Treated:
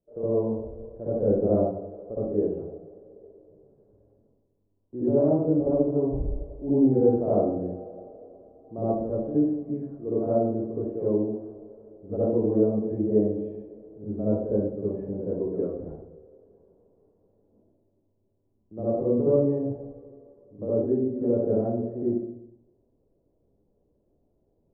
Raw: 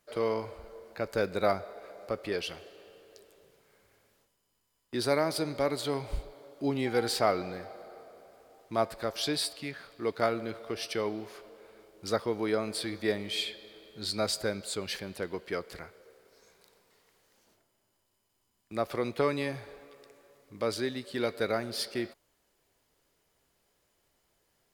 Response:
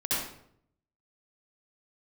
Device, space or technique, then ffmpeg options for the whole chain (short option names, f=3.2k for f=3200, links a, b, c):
next room: -filter_complex "[0:a]lowpass=f=560:w=0.5412,lowpass=f=560:w=1.3066[a];[1:a]atrim=start_sample=2205[b];[a][b]afir=irnorm=-1:irlink=0"